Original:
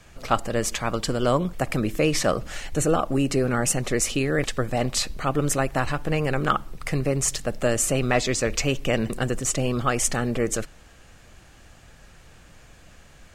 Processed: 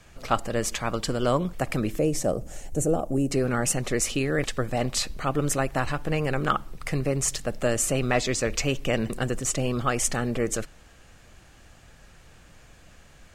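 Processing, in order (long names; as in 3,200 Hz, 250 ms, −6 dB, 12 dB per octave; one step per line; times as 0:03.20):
0:01.99–0:03.32: flat-topped bell 2,200 Hz −13.5 dB 2.6 octaves
level −2 dB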